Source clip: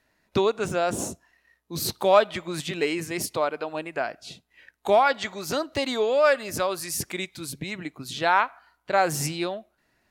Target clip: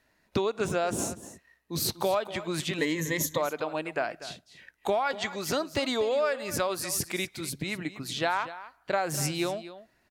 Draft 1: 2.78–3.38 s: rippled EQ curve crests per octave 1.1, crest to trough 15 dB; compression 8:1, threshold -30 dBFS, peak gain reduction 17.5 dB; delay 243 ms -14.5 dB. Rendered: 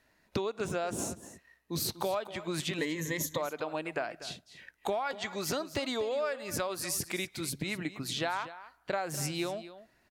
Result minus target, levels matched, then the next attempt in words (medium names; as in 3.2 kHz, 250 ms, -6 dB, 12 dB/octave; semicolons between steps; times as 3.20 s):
compression: peak gain reduction +5.5 dB
2.78–3.38 s: rippled EQ curve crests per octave 1.1, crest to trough 15 dB; compression 8:1, threshold -23.5 dBFS, peak gain reduction 12 dB; delay 243 ms -14.5 dB